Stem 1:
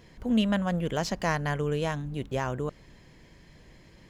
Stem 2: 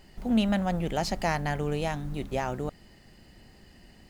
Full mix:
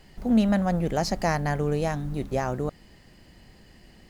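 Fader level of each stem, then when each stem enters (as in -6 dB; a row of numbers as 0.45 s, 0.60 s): -6.0 dB, +0.5 dB; 0.00 s, 0.00 s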